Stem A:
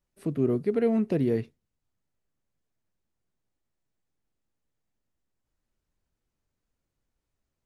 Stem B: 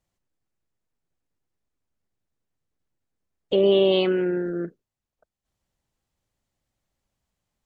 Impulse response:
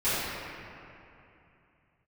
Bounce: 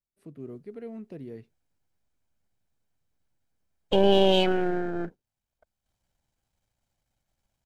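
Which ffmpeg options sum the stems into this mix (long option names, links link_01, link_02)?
-filter_complex "[0:a]volume=-15.5dB[link_01];[1:a]aeval=exprs='if(lt(val(0),0),0.447*val(0),val(0))':channel_layout=same,aecho=1:1:1.3:0.31,adelay=400,volume=2dB[link_02];[link_01][link_02]amix=inputs=2:normalize=0"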